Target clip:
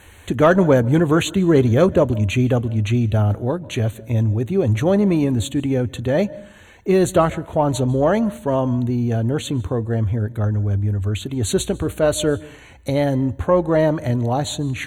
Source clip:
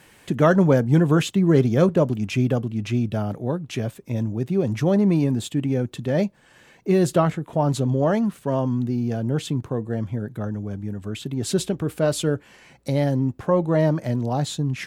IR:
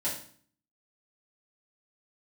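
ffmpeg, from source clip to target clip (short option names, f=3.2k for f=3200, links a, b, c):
-filter_complex "[0:a]asuperstop=centerf=5100:order=20:qfactor=3.5,lowshelf=f=110:t=q:w=3:g=9,asplit=2[a][b];[1:a]atrim=start_sample=2205,adelay=138[c];[b][c]afir=irnorm=-1:irlink=0,volume=-27.5dB[d];[a][d]amix=inputs=2:normalize=0,acontrast=25"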